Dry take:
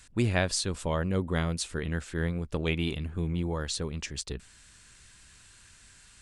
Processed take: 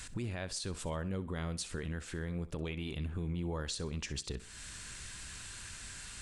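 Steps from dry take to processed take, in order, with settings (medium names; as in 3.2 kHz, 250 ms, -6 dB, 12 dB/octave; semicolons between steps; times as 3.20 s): compression 3:1, threshold -46 dBFS, peak gain reduction 18 dB; peak limiter -37 dBFS, peak gain reduction 9 dB; thinning echo 64 ms, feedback 36%, high-pass 160 Hz, level -16 dB; trim +8.5 dB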